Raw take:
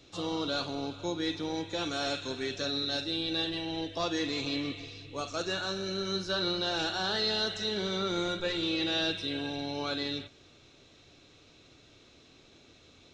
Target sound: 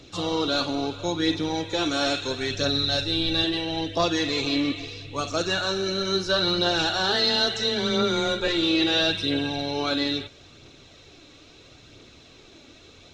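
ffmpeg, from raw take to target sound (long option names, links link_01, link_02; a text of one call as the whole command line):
ffmpeg -i in.wav -filter_complex "[0:a]asettb=1/sr,asplit=3[link_01][link_02][link_03];[link_01]atrim=end=7.124[link_04];[link_02]atrim=start=7.12:end=8.48,asetpts=PTS-STARTPTS,afade=type=in:duration=0.004:curve=qsin,afade=type=out:start_time=1.356:duration=0.004:curve=qsin,afreqshift=16[link_05];[link_03]atrim=start=8.476[link_06];[link_04][link_05]acrossfade=duration=0.004:curve1=hsin:curve2=qsin[link_07];[link_07][link_06]acrossfade=duration=0.004:curve1=qsin:curve2=hsin,aphaser=in_gain=1:out_gain=1:delay=3.7:decay=0.33:speed=0.75:type=triangular,asettb=1/sr,asplit=3[link_08][link_09][link_10];[link_08]atrim=end=2.234[link_11];[link_09]atrim=start=2.23:end=3.44,asetpts=PTS-STARTPTS,afade=type=in:duration=0.004:curve=qsin,afade=type=out:start_time=1.206:duration=0.004:curve=qsin,asubboost=boost=10:cutoff=140[link_12];[link_10]atrim=start=3.436[link_13];[link_11][link_12]acrossfade=duration=0.004:curve1=hsin:curve2=qsin[link_14];[link_14][link_13]acrossfade=duration=0.004:curve1=qsin:curve2=hsin,volume=7.5dB" out.wav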